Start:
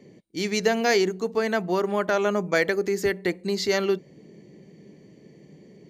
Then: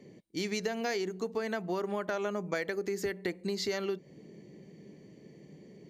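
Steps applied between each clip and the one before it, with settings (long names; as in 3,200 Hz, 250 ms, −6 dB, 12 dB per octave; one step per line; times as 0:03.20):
downward compressor, threshold −27 dBFS, peak gain reduction 11 dB
level −3 dB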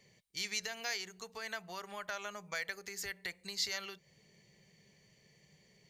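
guitar amp tone stack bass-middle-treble 10-0-10
level +3.5 dB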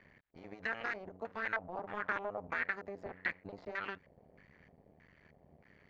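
sub-harmonics by changed cycles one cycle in 2, muted
brickwall limiter −29.5 dBFS, peak gain reduction 9 dB
auto-filter low-pass square 1.6 Hz 690–1,700 Hz
level +5.5 dB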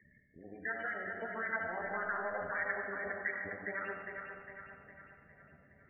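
spectral peaks only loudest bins 16
echo with a time of its own for lows and highs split 510 Hz, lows 172 ms, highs 407 ms, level −6 dB
comb and all-pass reverb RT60 1.4 s, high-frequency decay 0.95×, pre-delay 25 ms, DRR 2.5 dB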